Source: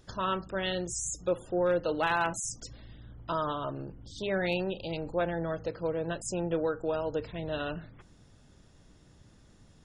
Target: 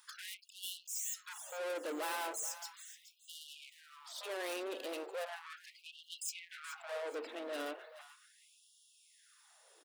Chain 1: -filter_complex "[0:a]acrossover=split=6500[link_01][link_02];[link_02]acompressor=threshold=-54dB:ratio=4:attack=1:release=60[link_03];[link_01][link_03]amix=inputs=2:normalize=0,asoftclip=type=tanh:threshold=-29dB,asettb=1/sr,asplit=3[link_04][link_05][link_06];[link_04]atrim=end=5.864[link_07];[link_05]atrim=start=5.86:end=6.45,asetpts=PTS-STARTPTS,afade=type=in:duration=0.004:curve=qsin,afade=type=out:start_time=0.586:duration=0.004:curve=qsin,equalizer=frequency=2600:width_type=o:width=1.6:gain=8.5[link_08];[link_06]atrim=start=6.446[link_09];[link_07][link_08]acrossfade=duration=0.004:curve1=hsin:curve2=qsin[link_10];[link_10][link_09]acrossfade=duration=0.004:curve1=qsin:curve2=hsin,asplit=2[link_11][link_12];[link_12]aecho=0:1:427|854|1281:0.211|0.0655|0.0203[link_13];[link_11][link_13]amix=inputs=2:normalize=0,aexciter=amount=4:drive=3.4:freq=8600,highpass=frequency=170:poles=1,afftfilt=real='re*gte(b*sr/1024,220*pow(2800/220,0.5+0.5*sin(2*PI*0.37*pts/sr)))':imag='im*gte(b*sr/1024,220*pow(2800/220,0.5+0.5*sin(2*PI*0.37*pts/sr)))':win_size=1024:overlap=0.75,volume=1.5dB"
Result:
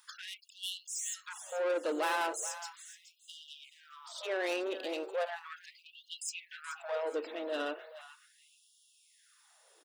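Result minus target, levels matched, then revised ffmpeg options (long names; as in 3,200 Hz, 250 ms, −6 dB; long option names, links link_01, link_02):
soft clipping: distortion −6 dB
-filter_complex "[0:a]acrossover=split=6500[link_01][link_02];[link_02]acompressor=threshold=-54dB:ratio=4:attack=1:release=60[link_03];[link_01][link_03]amix=inputs=2:normalize=0,asoftclip=type=tanh:threshold=-38.5dB,asettb=1/sr,asplit=3[link_04][link_05][link_06];[link_04]atrim=end=5.864[link_07];[link_05]atrim=start=5.86:end=6.45,asetpts=PTS-STARTPTS,afade=type=in:duration=0.004:curve=qsin,afade=type=out:start_time=0.586:duration=0.004:curve=qsin,equalizer=frequency=2600:width_type=o:width=1.6:gain=8.5[link_08];[link_06]atrim=start=6.446[link_09];[link_07][link_08]acrossfade=duration=0.004:curve1=hsin:curve2=qsin[link_10];[link_10][link_09]acrossfade=duration=0.004:curve1=qsin:curve2=hsin,asplit=2[link_11][link_12];[link_12]aecho=0:1:427|854|1281:0.211|0.0655|0.0203[link_13];[link_11][link_13]amix=inputs=2:normalize=0,aexciter=amount=4:drive=3.4:freq=8600,highpass=frequency=170:poles=1,afftfilt=real='re*gte(b*sr/1024,220*pow(2800/220,0.5+0.5*sin(2*PI*0.37*pts/sr)))':imag='im*gte(b*sr/1024,220*pow(2800/220,0.5+0.5*sin(2*PI*0.37*pts/sr)))':win_size=1024:overlap=0.75,volume=1.5dB"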